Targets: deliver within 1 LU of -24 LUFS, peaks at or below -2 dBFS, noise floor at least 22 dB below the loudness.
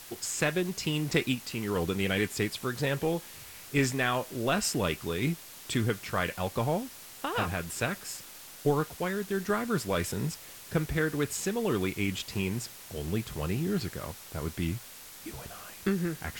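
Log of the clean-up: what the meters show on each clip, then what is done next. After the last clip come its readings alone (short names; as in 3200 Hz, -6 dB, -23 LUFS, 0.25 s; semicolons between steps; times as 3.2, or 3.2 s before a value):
noise floor -48 dBFS; noise floor target -53 dBFS; loudness -31.0 LUFS; peak -12.5 dBFS; loudness target -24.0 LUFS
-> denoiser 6 dB, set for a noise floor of -48 dBFS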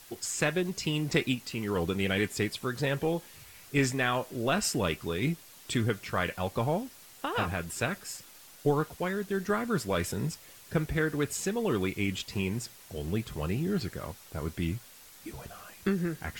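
noise floor -53 dBFS; noise floor target -54 dBFS
-> denoiser 6 dB, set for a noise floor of -53 dBFS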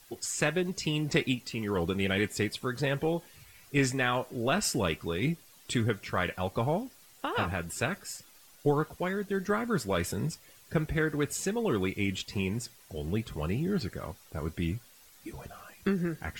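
noise floor -57 dBFS; loudness -31.5 LUFS; peak -12.5 dBFS; loudness target -24.0 LUFS
-> gain +7.5 dB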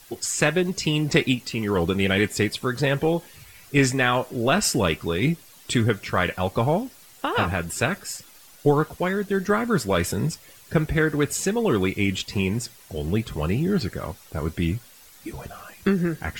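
loudness -24.0 LUFS; peak -5.0 dBFS; noise floor -50 dBFS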